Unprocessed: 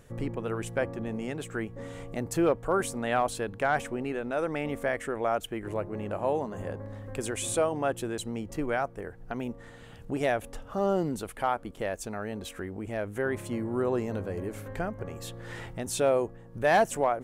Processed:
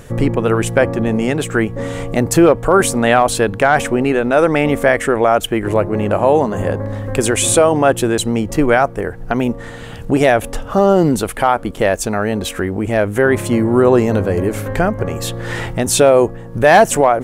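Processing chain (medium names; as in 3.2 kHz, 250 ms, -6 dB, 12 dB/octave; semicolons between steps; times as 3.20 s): loudness maximiser +18.5 dB; trim -1 dB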